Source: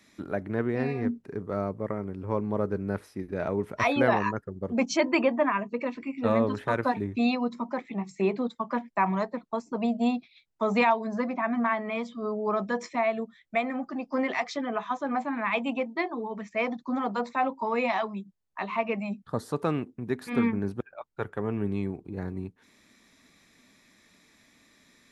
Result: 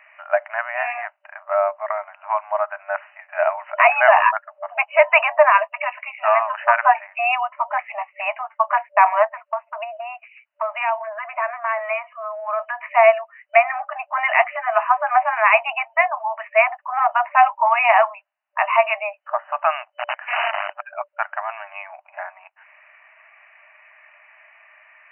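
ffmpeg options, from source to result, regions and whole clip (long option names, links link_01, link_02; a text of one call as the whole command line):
ffmpeg -i in.wav -filter_complex "[0:a]asettb=1/sr,asplit=3[link_01][link_02][link_03];[link_01]atrim=end=9.274[link_04];[link_02]atrim=start=9.27:end=12.91,asetpts=PTS-STARTPTS,afade=type=in:duration=0.004:curve=qsin,afade=type=out:start_time=3.636:duration=0.004:curve=qsin,bandreject=frequency=790:width=5.9,acompressor=threshold=-31dB:ratio=6:attack=3.2:release=140:knee=1:detection=peak[link_05];[link_03]atrim=start=12.906[link_06];[link_04][link_05]acrossfade=duration=0.004:curve1=hsin:curve2=qsin[link_07];[link_07][link_06]acrossfade=duration=0.004:curve1=qsin:curve2=hsin,asettb=1/sr,asplit=3[link_08][link_09][link_10];[link_08]atrim=end=19.874[link_11];[link_09]atrim=start=19.87:end=20.7,asetpts=PTS-STARTPTS,afade=type=in:duration=0.004:curve=qsin,afade=type=out:start_time=0.826:duration=0.004:curve=qsin,aeval=exprs='val(0)+0.00708*(sin(2*PI*50*n/s)+sin(2*PI*2*50*n/s)/2+sin(2*PI*3*50*n/s)/3+sin(2*PI*4*50*n/s)/4+sin(2*PI*5*50*n/s)/5)':channel_layout=same,acompressor=threshold=-26dB:ratio=12:attack=3.2:release=140:knee=1:detection=peak,aeval=exprs='(mod(25.1*val(0)+1,2)-1)/25.1':channel_layout=same[link_12];[link_10]atrim=start=20.696[link_13];[link_11][link_12]acrossfade=duration=0.004:curve1=hsin:curve2=qsin[link_14];[link_14][link_13]acrossfade=duration=0.004:curve1=qsin:curve2=hsin,afftfilt=real='re*between(b*sr/4096,590,3000)':imag='im*between(b*sr/4096,590,3000)':win_size=4096:overlap=0.75,alimiter=level_in=15.5dB:limit=-1dB:release=50:level=0:latency=1,volume=-1dB" out.wav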